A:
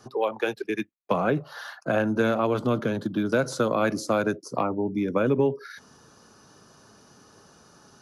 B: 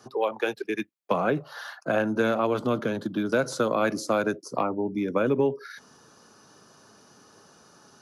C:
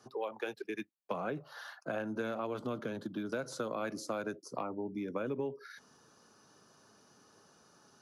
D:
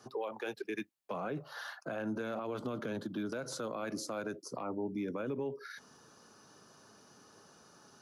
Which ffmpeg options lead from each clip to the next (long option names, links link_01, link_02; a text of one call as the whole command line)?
ffmpeg -i in.wav -af "highpass=frequency=170:poles=1" out.wav
ffmpeg -i in.wav -af "acompressor=threshold=-27dB:ratio=2,volume=-8.5dB" out.wav
ffmpeg -i in.wav -af "alimiter=level_in=8.5dB:limit=-24dB:level=0:latency=1:release=54,volume=-8.5dB,volume=3.5dB" out.wav